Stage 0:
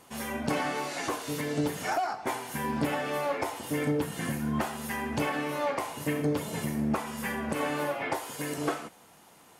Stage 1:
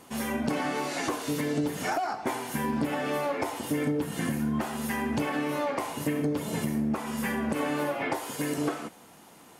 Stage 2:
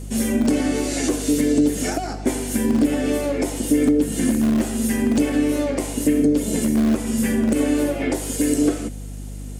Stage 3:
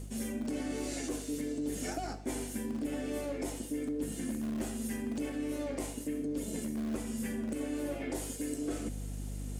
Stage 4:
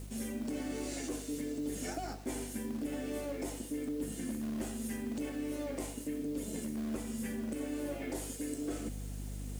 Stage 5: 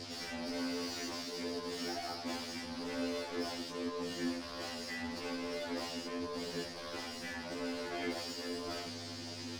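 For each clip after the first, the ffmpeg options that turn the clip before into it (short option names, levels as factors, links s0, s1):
-af "equalizer=f=260:t=o:w=1.2:g=5,acompressor=threshold=0.0398:ratio=4,volume=1.33"
-filter_complex "[0:a]equalizer=f=125:t=o:w=1:g=-9,equalizer=f=250:t=o:w=1:g=11,equalizer=f=500:t=o:w=1:g=5,equalizer=f=1000:t=o:w=1:g=-12,equalizer=f=8000:t=o:w=1:g=11,acrossover=split=150|1200|1800[s0][s1][s2][s3];[s0]aeval=exprs='(mod(39.8*val(0)+1,2)-1)/39.8':c=same[s4];[s4][s1][s2][s3]amix=inputs=4:normalize=0,aeval=exprs='val(0)+0.0178*(sin(2*PI*50*n/s)+sin(2*PI*2*50*n/s)/2+sin(2*PI*3*50*n/s)/3+sin(2*PI*4*50*n/s)/4+sin(2*PI*5*50*n/s)/5)':c=same,volume=1.58"
-af "areverse,acompressor=threshold=0.0398:ratio=6,areverse,aeval=exprs='sgn(val(0))*max(abs(val(0))-0.00126,0)':c=same,volume=0.531"
-af "acrusher=bits=8:mix=0:aa=0.000001,volume=0.794"
-filter_complex "[0:a]lowpass=f=4900:t=q:w=6.7,asplit=2[s0][s1];[s1]highpass=f=720:p=1,volume=22.4,asoftclip=type=tanh:threshold=0.0631[s2];[s0][s2]amix=inputs=2:normalize=0,lowpass=f=2300:p=1,volume=0.501,afftfilt=real='re*2*eq(mod(b,4),0)':imag='im*2*eq(mod(b,4),0)':win_size=2048:overlap=0.75,volume=0.668"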